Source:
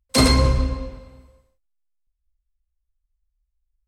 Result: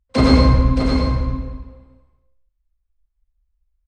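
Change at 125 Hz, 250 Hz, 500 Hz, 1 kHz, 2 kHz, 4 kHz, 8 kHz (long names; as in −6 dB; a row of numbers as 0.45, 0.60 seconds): +5.5 dB, +7.0 dB, +4.0 dB, +3.5 dB, +0.5 dB, −3.0 dB, below −10 dB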